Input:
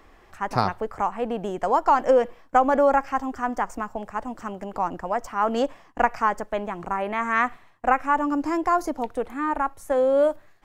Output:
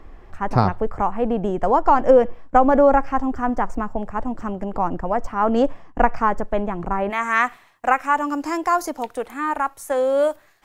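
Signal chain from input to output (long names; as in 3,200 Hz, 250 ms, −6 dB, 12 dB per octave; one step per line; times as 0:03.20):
spectral tilt −2.5 dB per octave, from 0:07.09 +2 dB per octave
level +2.5 dB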